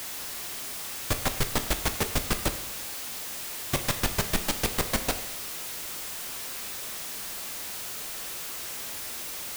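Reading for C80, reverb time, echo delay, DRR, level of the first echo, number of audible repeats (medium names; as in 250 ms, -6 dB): 13.0 dB, 0.85 s, no echo, 7.5 dB, no echo, no echo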